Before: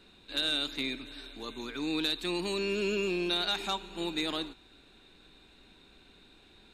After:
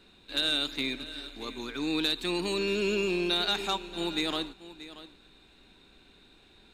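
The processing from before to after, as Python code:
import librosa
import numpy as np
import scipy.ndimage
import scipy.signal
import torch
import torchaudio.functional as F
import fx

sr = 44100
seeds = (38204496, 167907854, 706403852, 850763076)

p1 = np.sign(x) * np.maximum(np.abs(x) - 10.0 ** (-46.0 / 20.0), 0.0)
p2 = x + F.gain(torch.from_numpy(p1), -9.0).numpy()
y = p2 + 10.0 ** (-15.5 / 20.0) * np.pad(p2, (int(631 * sr / 1000.0), 0))[:len(p2)]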